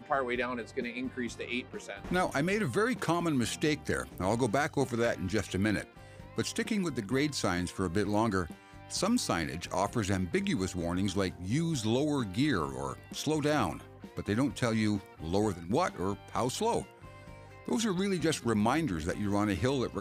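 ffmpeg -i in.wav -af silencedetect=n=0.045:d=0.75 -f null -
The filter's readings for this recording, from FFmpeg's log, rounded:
silence_start: 16.80
silence_end: 17.68 | silence_duration: 0.88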